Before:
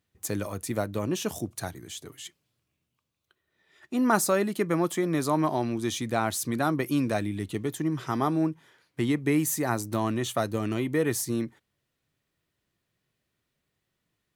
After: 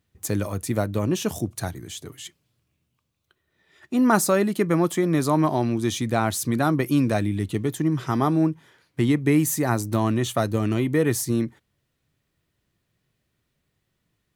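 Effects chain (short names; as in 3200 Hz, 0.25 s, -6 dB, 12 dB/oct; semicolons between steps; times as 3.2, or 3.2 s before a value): low shelf 190 Hz +7 dB; gain +3 dB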